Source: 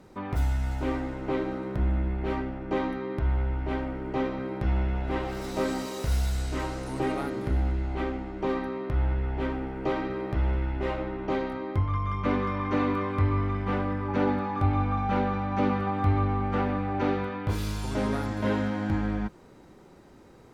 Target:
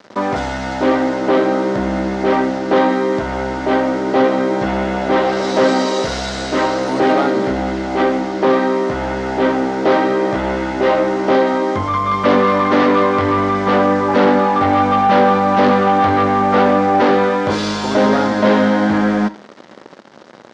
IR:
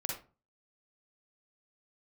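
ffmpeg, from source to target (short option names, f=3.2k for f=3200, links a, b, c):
-filter_complex "[0:a]bass=f=250:g=-10,treble=f=4k:g=0,acrusher=bits=7:mix=0:aa=0.5,aeval=exprs='0.158*(cos(1*acos(clip(val(0)/0.158,-1,1)))-cos(1*PI/2))+0.0631*(cos(5*acos(clip(val(0)/0.158,-1,1)))-cos(5*PI/2))':c=same,highpass=150,equalizer=f=220:t=q:w=4:g=6,equalizer=f=580:t=q:w=4:g=5,equalizer=f=2.5k:t=q:w=4:g=-5,lowpass=f=6.1k:w=0.5412,lowpass=f=6.1k:w=1.3066,asplit=2[a][b];[1:a]atrim=start_sample=2205[c];[b][c]afir=irnorm=-1:irlink=0,volume=-14dB[d];[a][d]amix=inputs=2:normalize=0,volume=7.5dB"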